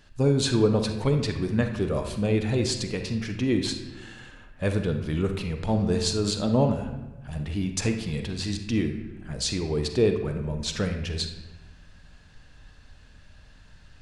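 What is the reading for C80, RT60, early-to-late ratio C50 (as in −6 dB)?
9.5 dB, 1.1 s, 7.0 dB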